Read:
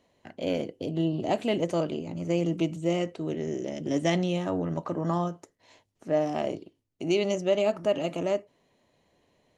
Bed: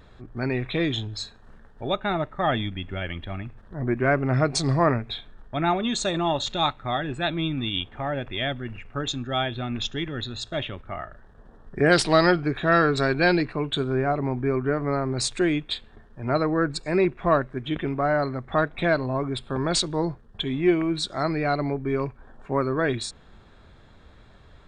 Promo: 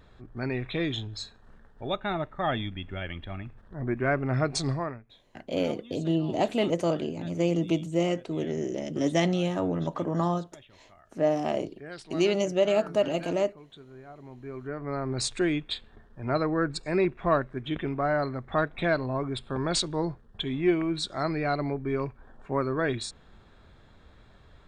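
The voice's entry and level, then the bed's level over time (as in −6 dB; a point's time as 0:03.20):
5.10 s, +1.0 dB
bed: 0:04.68 −4.5 dB
0:05.08 −23.5 dB
0:14.06 −23.5 dB
0:15.12 −3.5 dB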